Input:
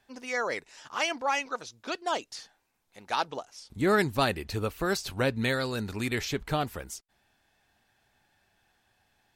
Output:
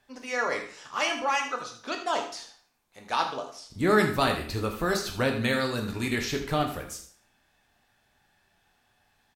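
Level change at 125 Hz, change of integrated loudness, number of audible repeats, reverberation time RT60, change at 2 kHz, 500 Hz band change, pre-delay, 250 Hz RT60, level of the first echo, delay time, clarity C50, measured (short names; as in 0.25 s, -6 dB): +1.0 dB, +2.0 dB, 1, 0.55 s, +2.0 dB, +2.0 dB, 6 ms, 0.50 s, -12.0 dB, 80 ms, 7.5 dB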